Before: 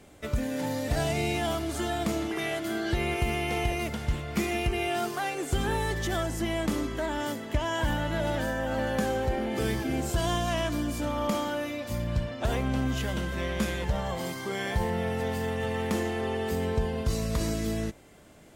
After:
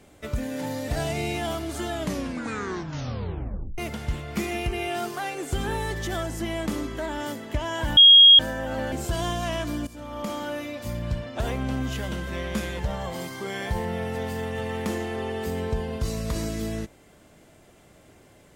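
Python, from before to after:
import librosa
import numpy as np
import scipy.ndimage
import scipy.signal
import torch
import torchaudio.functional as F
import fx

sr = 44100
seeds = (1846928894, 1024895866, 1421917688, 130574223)

y = fx.edit(x, sr, fx.tape_stop(start_s=1.89, length_s=1.89),
    fx.bleep(start_s=7.97, length_s=0.42, hz=3270.0, db=-8.0),
    fx.cut(start_s=8.92, length_s=1.05),
    fx.fade_in_from(start_s=10.92, length_s=0.65, floor_db=-14.5), tone=tone)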